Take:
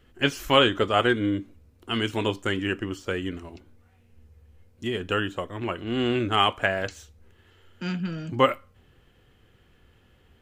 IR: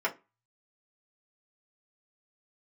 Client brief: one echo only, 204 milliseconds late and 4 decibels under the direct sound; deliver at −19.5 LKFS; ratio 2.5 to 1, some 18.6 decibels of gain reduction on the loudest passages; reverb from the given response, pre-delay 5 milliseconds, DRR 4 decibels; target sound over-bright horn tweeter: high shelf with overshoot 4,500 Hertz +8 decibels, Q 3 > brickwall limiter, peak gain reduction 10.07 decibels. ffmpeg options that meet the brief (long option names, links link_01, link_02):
-filter_complex "[0:a]acompressor=threshold=-43dB:ratio=2.5,aecho=1:1:204:0.631,asplit=2[link_01][link_02];[1:a]atrim=start_sample=2205,adelay=5[link_03];[link_02][link_03]afir=irnorm=-1:irlink=0,volume=-13dB[link_04];[link_01][link_04]amix=inputs=2:normalize=0,highshelf=frequency=4500:width_type=q:width=3:gain=8,volume=22dB,alimiter=limit=-10dB:level=0:latency=1"